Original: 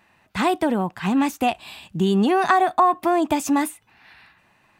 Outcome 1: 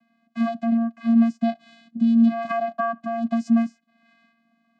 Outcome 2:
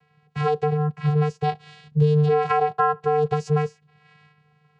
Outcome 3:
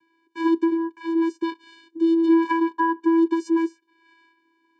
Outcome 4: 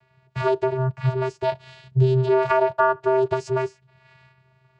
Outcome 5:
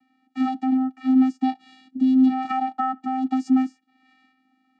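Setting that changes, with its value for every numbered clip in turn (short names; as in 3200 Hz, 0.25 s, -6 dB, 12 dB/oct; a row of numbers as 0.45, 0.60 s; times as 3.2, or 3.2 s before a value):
vocoder, frequency: 230, 150, 330, 130, 260 Hz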